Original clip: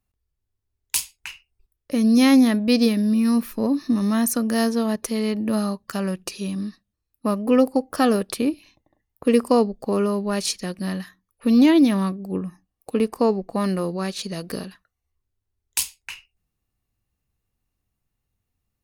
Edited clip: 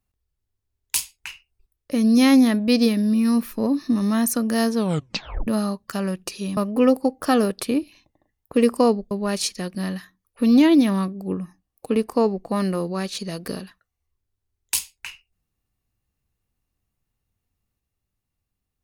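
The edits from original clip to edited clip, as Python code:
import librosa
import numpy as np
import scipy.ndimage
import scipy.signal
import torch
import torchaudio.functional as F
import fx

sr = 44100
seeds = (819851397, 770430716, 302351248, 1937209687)

y = fx.edit(x, sr, fx.tape_stop(start_s=4.77, length_s=0.7),
    fx.cut(start_s=6.57, length_s=0.71),
    fx.cut(start_s=9.82, length_s=0.33), tone=tone)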